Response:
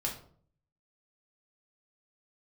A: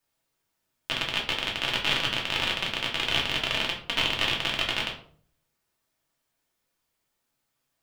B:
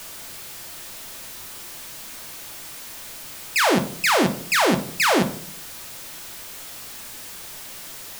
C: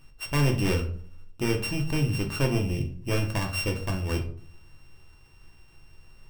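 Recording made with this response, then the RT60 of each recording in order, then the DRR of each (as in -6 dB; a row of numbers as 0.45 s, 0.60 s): A; 0.55 s, 0.55 s, 0.55 s; -2.0 dB, 6.5 dB, 2.0 dB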